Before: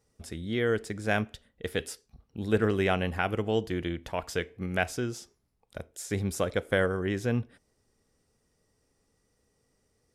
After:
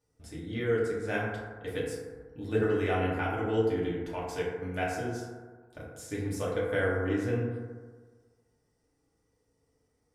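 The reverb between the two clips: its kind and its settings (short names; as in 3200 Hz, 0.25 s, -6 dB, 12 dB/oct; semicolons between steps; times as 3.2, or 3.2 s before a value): FDN reverb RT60 1.5 s, low-frequency decay 0.9×, high-frequency decay 0.3×, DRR -7 dB; gain -10.5 dB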